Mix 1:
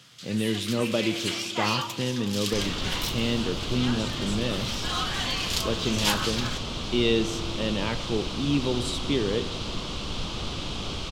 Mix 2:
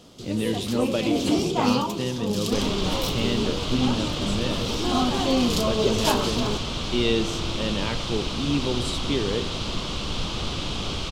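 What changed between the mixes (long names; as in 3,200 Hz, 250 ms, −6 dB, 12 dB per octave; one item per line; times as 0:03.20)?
first sound: remove high-pass with resonance 1,700 Hz, resonance Q 2.4
second sound +3.5 dB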